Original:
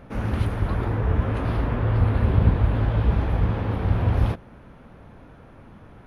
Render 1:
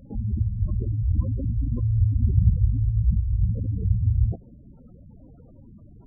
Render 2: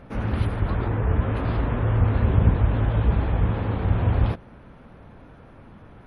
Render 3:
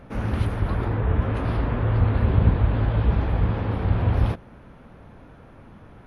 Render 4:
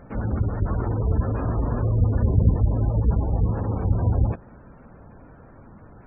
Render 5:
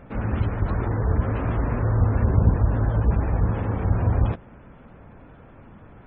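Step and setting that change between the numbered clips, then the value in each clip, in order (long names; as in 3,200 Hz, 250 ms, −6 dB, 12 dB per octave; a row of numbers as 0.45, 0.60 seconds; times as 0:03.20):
gate on every frequency bin, under each frame's peak: −10, −50, −60, −25, −35 decibels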